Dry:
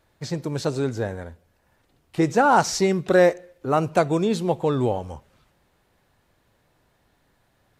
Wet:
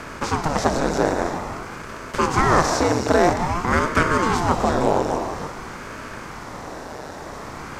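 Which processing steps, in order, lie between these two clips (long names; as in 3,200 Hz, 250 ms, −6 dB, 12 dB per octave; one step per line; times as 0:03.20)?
compressor on every frequency bin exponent 0.4
reverb whose tail is shaped and stops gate 360 ms rising, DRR 7 dB
ring modulator whose carrier an LFO sweeps 430 Hz, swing 85%, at 0.5 Hz
level −1 dB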